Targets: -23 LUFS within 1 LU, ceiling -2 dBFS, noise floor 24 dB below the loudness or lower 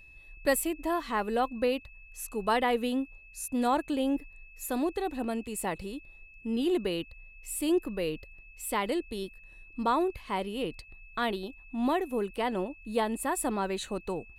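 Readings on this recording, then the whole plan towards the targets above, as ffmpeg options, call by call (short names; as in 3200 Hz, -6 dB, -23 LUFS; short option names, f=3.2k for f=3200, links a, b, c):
steady tone 2600 Hz; tone level -52 dBFS; loudness -31.5 LUFS; peak -13.0 dBFS; loudness target -23.0 LUFS
-> -af "bandreject=f=2.6k:w=30"
-af "volume=8.5dB"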